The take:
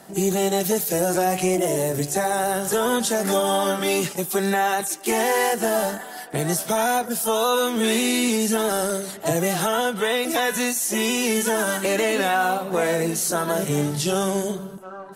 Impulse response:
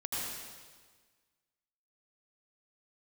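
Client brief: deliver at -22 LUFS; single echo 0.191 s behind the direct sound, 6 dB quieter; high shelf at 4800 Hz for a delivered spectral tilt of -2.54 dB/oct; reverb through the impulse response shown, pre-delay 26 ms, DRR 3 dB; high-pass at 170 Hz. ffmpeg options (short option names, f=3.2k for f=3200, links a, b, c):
-filter_complex "[0:a]highpass=170,highshelf=f=4.8k:g=6.5,aecho=1:1:191:0.501,asplit=2[a][b];[1:a]atrim=start_sample=2205,adelay=26[c];[b][c]afir=irnorm=-1:irlink=0,volume=-7.5dB[d];[a][d]amix=inputs=2:normalize=0,volume=-4.5dB"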